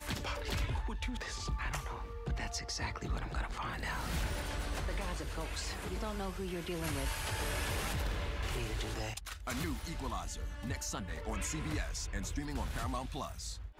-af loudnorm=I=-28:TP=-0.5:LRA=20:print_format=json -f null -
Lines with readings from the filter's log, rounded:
"input_i" : "-38.9",
"input_tp" : "-22.8",
"input_lra" : "1.8",
"input_thresh" : "-48.9",